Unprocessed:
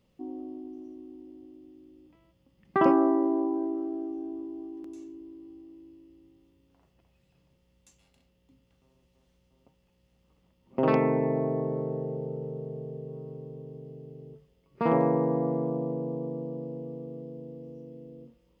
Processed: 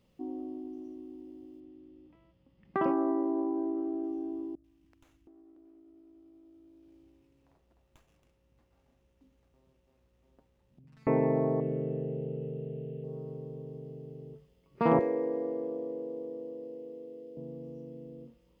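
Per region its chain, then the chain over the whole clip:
1.6–4.04 air absorption 170 m + compressor 2:1, threshold -29 dBFS
4.55–11.07 three bands offset in time lows, highs, mids 90/720 ms, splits 150/1900 Hz + compressor 20:1, threshold -54 dBFS + running maximum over 9 samples
11.6–13.04 bell 2700 Hz +11 dB 0.47 oct + fixed phaser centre 2400 Hz, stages 4
14.99–17.37 Bessel high-pass 450 Hz, order 4 + band shelf 1000 Hz -12 dB 1.3 oct
whole clip: dry

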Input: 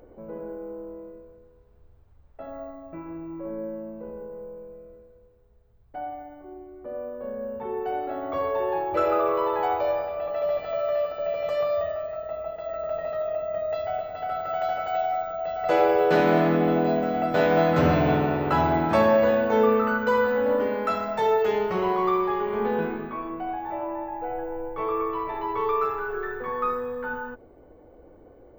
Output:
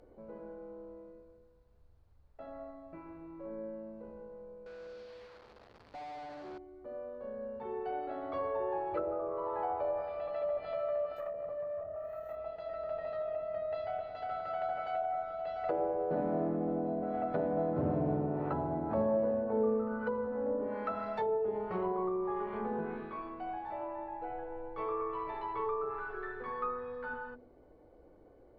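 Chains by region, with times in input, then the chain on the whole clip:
4.66–6.58 delta modulation 32 kbps, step -54 dBFS + overdrive pedal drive 28 dB, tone 1200 Hz, clips at -29.5 dBFS + running maximum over 3 samples
11.16–12.36 careless resampling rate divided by 3×, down none, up zero stuff + core saturation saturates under 3300 Hz
whole clip: treble ducked by the level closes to 600 Hz, closed at -19 dBFS; bell 4400 Hz +8 dB 0.35 oct; de-hum 82.76 Hz, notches 6; gain -8.5 dB

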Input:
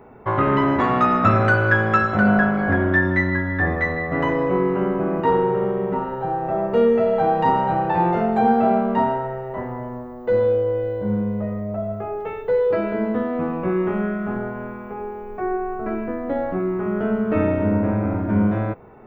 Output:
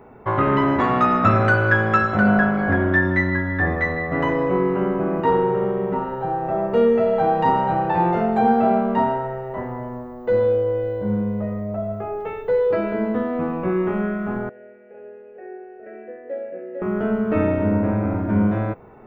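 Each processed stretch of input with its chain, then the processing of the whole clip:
14.49–16.82 vowel filter e + tapped delay 68/451 ms -8.5/-3 dB
whole clip: dry

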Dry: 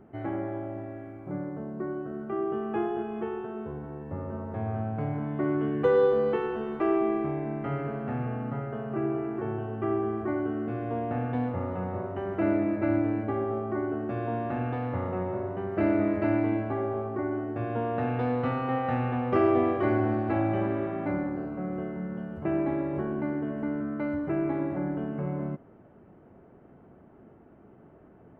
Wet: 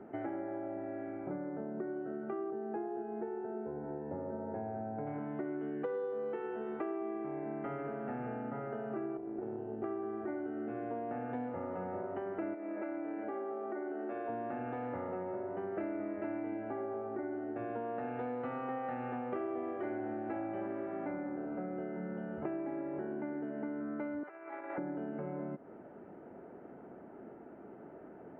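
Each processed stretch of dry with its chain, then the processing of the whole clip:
2.5–5.07 Chebyshev low-pass 1300 Hz + bell 1200 Hz -13.5 dB 0.29 oct
9.17–9.84 EQ curve 370 Hz 0 dB, 1100 Hz -14 dB, 3500 Hz -9 dB + tube stage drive 26 dB, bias 0.7
12.54–14.29 HPF 310 Hz + compressor 4:1, threshold -30 dBFS
24.23–24.78 negative-ratio compressor -32 dBFS, ratio -0.5 + HPF 1000 Hz + air absorption 120 m
whole clip: three-band isolator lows -16 dB, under 210 Hz, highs -20 dB, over 2600 Hz; notch 1100 Hz, Q 9.1; compressor, threshold -42 dBFS; gain +5 dB

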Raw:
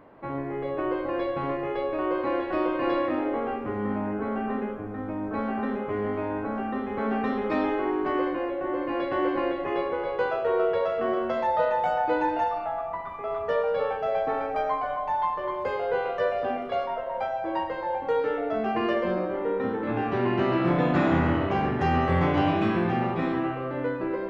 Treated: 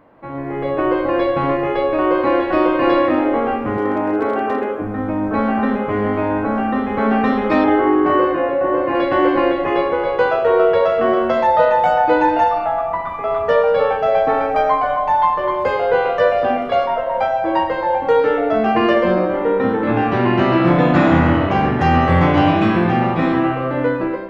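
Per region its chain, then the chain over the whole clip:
3.77–4.82 HPF 56 Hz 24 dB/oct + resonant low shelf 260 Hz -7.5 dB, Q 3 + hard clip -21.5 dBFS
7.64–8.95 HPF 42 Hz + high shelf 3200 Hz -11 dB + doubler 36 ms -3 dB
whole clip: notch 400 Hz, Q 12; AGC gain up to 10 dB; gain +1.5 dB

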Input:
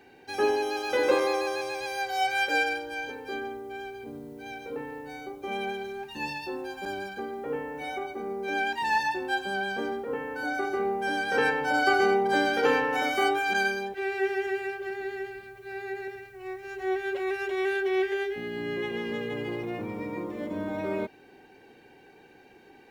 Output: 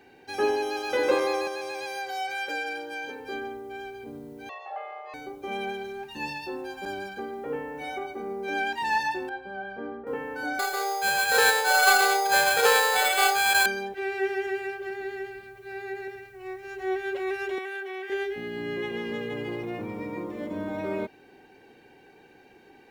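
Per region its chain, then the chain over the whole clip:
1.47–3.2 HPF 140 Hz 24 dB/oct + compressor 2.5:1, threshold -30 dBFS
4.49–5.14 frequency shift +320 Hz + BPF 320–5300 Hz + air absorption 120 m
9.29–10.07 LPF 1800 Hz + resonator 59 Hz, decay 0.32 s, mix 70%
10.59–13.66 brick-wall FIR high-pass 400 Hz + bell 1700 Hz +6.5 dB 2.5 oct + sample-rate reducer 5700 Hz
17.58–18.1 bell 5000 Hz -5 dB 1.1 oct + compressor 4:1, threshold -28 dBFS + HPF 540 Hz
whole clip: dry

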